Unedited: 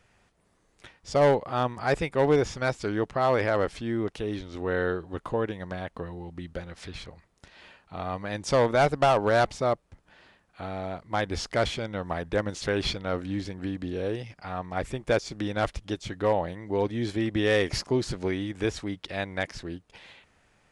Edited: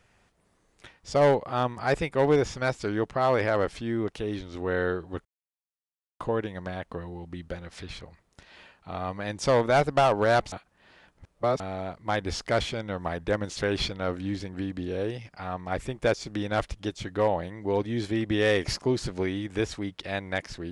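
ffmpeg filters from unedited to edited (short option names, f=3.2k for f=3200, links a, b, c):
-filter_complex "[0:a]asplit=4[a][b][c][d];[a]atrim=end=5.25,asetpts=PTS-STARTPTS,afade=t=out:st=5.246:d=0.004:c=hsin,apad=pad_dur=0.95[e];[b]atrim=start=5.25:end=9.572,asetpts=PTS-STARTPTS,afade=t=in:d=0.004:c=hsin[f];[c]atrim=start=9.568:end=10.652,asetpts=PTS-STARTPTS,areverse[g];[d]atrim=start=10.648[h];[e][f]concat=n=2:v=0:a=1[i];[i][g]acrossfade=d=0.004:c1=hsin:c2=hsin[j];[j][h]acrossfade=d=0.004:c1=hsin:c2=hsin"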